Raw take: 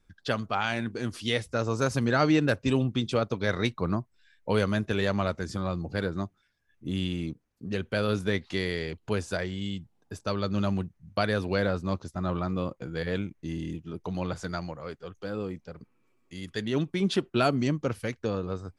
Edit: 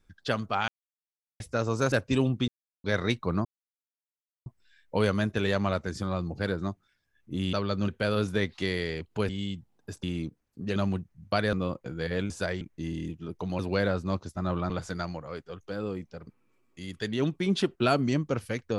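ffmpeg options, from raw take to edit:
-filter_complex "[0:a]asplit=17[s0][s1][s2][s3][s4][s5][s6][s7][s8][s9][s10][s11][s12][s13][s14][s15][s16];[s0]atrim=end=0.68,asetpts=PTS-STARTPTS,afade=t=out:st=0.676:d=0.004:c=hsin[s17];[s1]atrim=start=0.68:end=1.4,asetpts=PTS-STARTPTS,volume=0[s18];[s2]atrim=start=1.4:end=1.922,asetpts=PTS-STARTPTS,afade=t=in:d=0.004:c=hsin[s19];[s3]atrim=start=2.468:end=3.03,asetpts=PTS-STARTPTS,afade=t=out:st=0.558:d=0.004:c=hsin[s20];[s4]atrim=start=3.03:end=3.39,asetpts=PTS-STARTPTS,volume=0[s21];[s5]atrim=start=3.39:end=4,asetpts=PTS-STARTPTS,afade=t=in:d=0.004:c=hsin,afade=t=out:st=0.606:d=0.004:c=hsin,apad=pad_dur=1.01[s22];[s6]atrim=start=4:end=7.072,asetpts=PTS-STARTPTS,afade=t=in:d=0.004:c=hsin[s23];[s7]atrim=start=10.258:end=10.612[s24];[s8]atrim=start=7.798:end=9.212[s25];[s9]atrim=start=9.518:end=10.262[s26];[s10]atrim=start=7.068:end=7.802[s27];[s11]atrim=start=10.608:end=11.382[s28];[s12]atrim=start=12.488:end=13.262[s29];[s13]atrim=start=9.208:end=9.522[s30];[s14]atrim=start=13.258:end=14.242[s31];[s15]atrim=start=11.378:end=12.492[s32];[s16]atrim=start=14.238[s33];[s17][s18][s19]concat=n=3:v=0:a=1[s34];[s20][s21][s22][s23]concat=n=4:v=0:a=1[s35];[s34][s35]acrossfade=d=0.004:c1=hsin:c2=hsin[s36];[s36][s24]acrossfade=d=0.004:c1=hsin:c2=hsin[s37];[s37][s25]acrossfade=d=0.004:c1=hsin:c2=hsin[s38];[s38][s26]acrossfade=d=0.004:c1=hsin:c2=hsin[s39];[s39][s27]acrossfade=d=0.004:c1=hsin:c2=hsin[s40];[s40][s28]acrossfade=d=0.004:c1=hsin:c2=hsin[s41];[s41][s29]acrossfade=d=0.004:c1=hsin:c2=hsin[s42];[s42][s30]acrossfade=d=0.004:c1=hsin:c2=hsin[s43];[s43][s31]acrossfade=d=0.004:c1=hsin:c2=hsin[s44];[s44][s32]acrossfade=d=0.004:c1=hsin:c2=hsin[s45];[s45][s33]acrossfade=d=0.004:c1=hsin:c2=hsin"

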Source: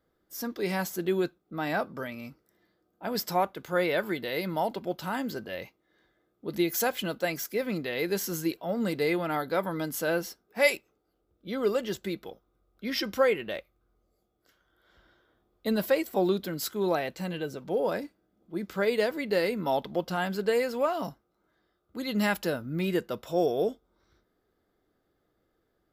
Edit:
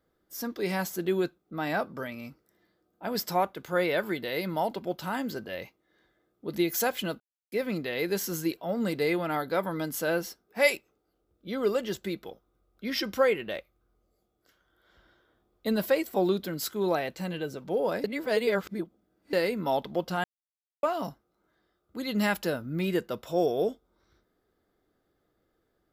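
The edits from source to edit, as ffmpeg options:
-filter_complex "[0:a]asplit=7[s0][s1][s2][s3][s4][s5][s6];[s0]atrim=end=7.2,asetpts=PTS-STARTPTS,afade=t=out:st=7.196:d=0.004:c=hsin[s7];[s1]atrim=start=7.2:end=7.52,asetpts=PTS-STARTPTS,volume=0[s8];[s2]atrim=start=7.52:end=18.042,asetpts=PTS-STARTPTS,afade=t=in:d=0.004:c=hsin[s9];[s3]atrim=start=18.038:end=19.332,asetpts=PTS-STARTPTS,areverse[s10];[s4]atrim=start=19.328:end=20.24,asetpts=PTS-STARTPTS,afade=t=out:st=0.908:d=0.004:c=hsin[s11];[s5]atrim=start=20.24:end=20.83,asetpts=PTS-STARTPTS,volume=0[s12];[s6]atrim=start=20.83,asetpts=PTS-STARTPTS,afade=t=in:d=0.004:c=hsin[s13];[s7][s8][s9]concat=n=3:v=0:a=1[s14];[s14][s10]acrossfade=d=0.004:c1=hsin:c2=hsin[s15];[s11][s12][s13]concat=n=3:v=0:a=1[s16];[s15][s16]acrossfade=d=0.004:c1=hsin:c2=hsin"

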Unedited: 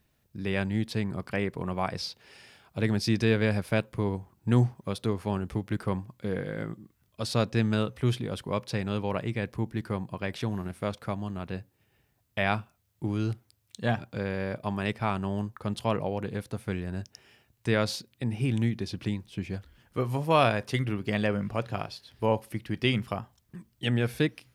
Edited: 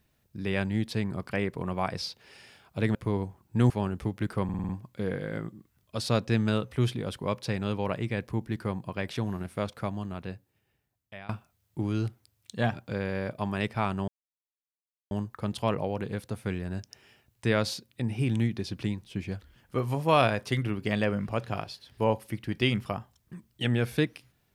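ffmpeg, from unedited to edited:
-filter_complex "[0:a]asplit=10[s0][s1][s2][s3][s4][s5][s6][s7][s8][s9];[s0]atrim=end=2.952[s10];[s1]atrim=start=3.868:end=4.622[s11];[s2]atrim=start=5.198:end=5.992[s12];[s3]atrim=start=5.938:end=5.992[s13];[s4]atrim=start=5.938:end=5.992[s14];[s5]atrim=start=5.938:end=5.992[s15];[s6]atrim=start=5.938:end=5.992[s16];[s7]atrim=start=5.938:end=12.54,asetpts=PTS-STARTPTS,afade=t=out:st=5.252:d=1.35:silence=0.0668344[s17];[s8]atrim=start=12.54:end=15.33,asetpts=PTS-STARTPTS,afade=t=in:d=0.004:c=hsin:silence=0.0668344,afade=t=out:st=2.786:d=0.004:c=hsin,apad=pad_dur=1.03[s18];[s9]atrim=start=15.33,asetpts=PTS-STARTPTS,afade=t=in:d=0.004:c=hsin[s19];[s10][s11]acrossfade=d=0.004:c1=hsin:c2=hsin[s20];[s20][s12]acrossfade=d=0.004:c1=hsin:c2=hsin[s21];[s21][s13]acrossfade=d=0.004:c1=hsin:c2=hsin[s22];[s22][s14]acrossfade=d=0.004:c1=hsin:c2=hsin[s23];[s23][s15]acrossfade=d=0.004:c1=hsin:c2=hsin[s24];[s24][s16]acrossfade=d=0.004:c1=hsin:c2=hsin[s25];[s17][s18][s19]concat=n=3:v=0:a=1[s26];[s25][s26]acrossfade=d=0.004:c1=hsin:c2=hsin"

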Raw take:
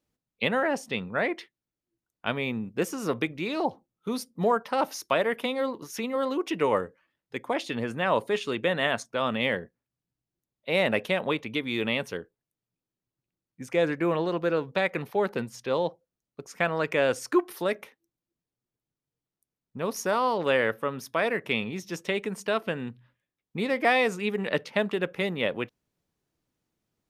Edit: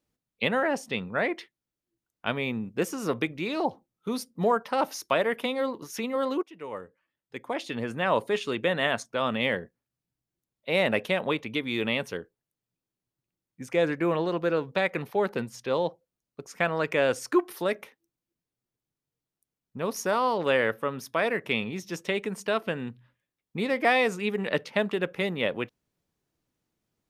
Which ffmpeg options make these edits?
-filter_complex "[0:a]asplit=2[s0][s1];[s0]atrim=end=6.43,asetpts=PTS-STARTPTS,afade=t=out:st=6.426:d=0.004:c=hsin:silence=0.0668344[s2];[s1]atrim=start=6.43,asetpts=PTS-STARTPTS,afade=t=in:d=1.62:silence=0.0668344[s3];[s2][s3]concat=n=2:v=0:a=1"

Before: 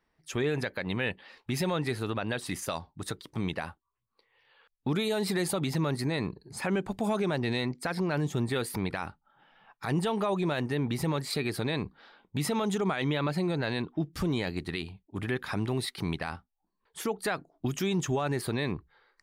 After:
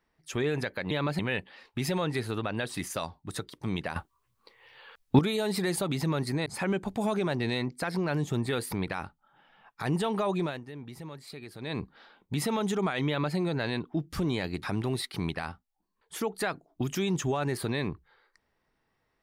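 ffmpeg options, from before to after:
-filter_complex "[0:a]asplit=9[s0][s1][s2][s3][s4][s5][s6][s7][s8];[s0]atrim=end=0.912[s9];[s1]atrim=start=13.108:end=13.392[s10];[s2]atrim=start=0.908:end=3.682[s11];[s3]atrim=start=3.678:end=4.912,asetpts=PTS-STARTPTS,volume=3.55[s12];[s4]atrim=start=4.908:end=6.182[s13];[s5]atrim=start=6.488:end=10.64,asetpts=PTS-STARTPTS,afade=t=out:st=3.942:d=0.21:silence=0.223872[s14];[s6]atrim=start=10.64:end=11.62,asetpts=PTS-STARTPTS,volume=0.224[s15];[s7]atrim=start=11.62:end=14.662,asetpts=PTS-STARTPTS,afade=t=in:d=0.21:silence=0.223872[s16];[s8]atrim=start=15.468[s17];[s9][s10]acrossfade=d=0.004:c1=hsin:c2=hsin[s18];[s18][s11]acrossfade=d=0.004:c1=hsin:c2=hsin[s19];[s19][s12]acrossfade=d=0.004:c1=hsin:c2=hsin[s20];[s20][s13]acrossfade=d=0.004:c1=hsin:c2=hsin[s21];[s14][s15][s16]concat=n=3:v=0:a=1[s22];[s21][s22]acrossfade=d=0.004:c1=hsin:c2=hsin[s23];[s23][s17]acrossfade=d=0.004:c1=hsin:c2=hsin"

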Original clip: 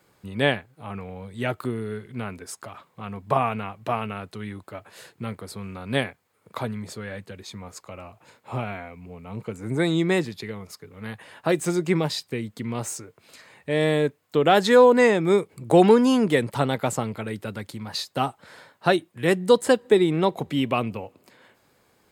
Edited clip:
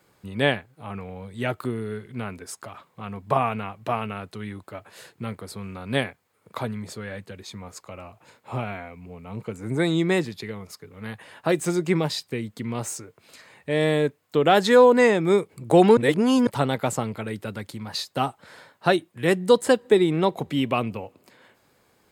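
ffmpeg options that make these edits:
-filter_complex "[0:a]asplit=3[s0][s1][s2];[s0]atrim=end=15.972[s3];[s1]atrim=start=15.968:end=16.472,asetpts=PTS-STARTPTS,areverse[s4];[s2]atrim=start=16.468[s5];[s3][s4]acrossfade=d=0.004:c1=hsin:c2=hsin[s6];[s6][s5]acrossfade=d=0.004:c1=hsin:c2=hsin"

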